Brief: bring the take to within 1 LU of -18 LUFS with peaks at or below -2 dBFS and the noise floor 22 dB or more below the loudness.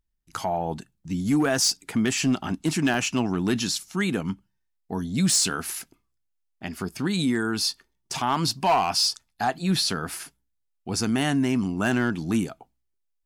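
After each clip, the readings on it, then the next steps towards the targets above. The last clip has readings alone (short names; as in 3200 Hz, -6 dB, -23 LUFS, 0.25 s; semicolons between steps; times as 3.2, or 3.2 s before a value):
clipped 0.5%; flat tops at -15.5 dBFS; dropouts 1; longest dropout 1.8 ms; loudness -25.0 LUFS; peak -15.5 dBFS; loudness target -18.0 LUFS
-> clip repair -15.5 dBFS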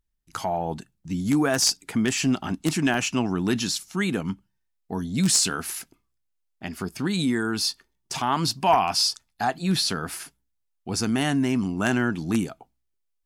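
clipped 0.0%; dropouts 1; longest dropout 1.8 ms
-> interpolate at 2.94, 1.8 ms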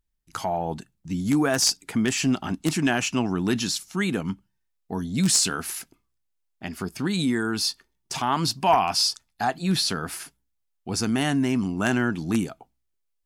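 dropouts 0; loudness -24.5 LUFS; peak -6.5 dBFS; loudness target -18.0 LUFS
-> gain +6.5 dB; limiter -2 dBFS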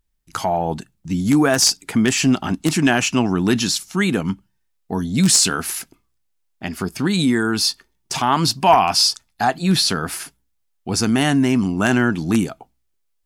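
loudness -18.5 LUFS; peak -2.0 dBFS; noise floor -69 dBFS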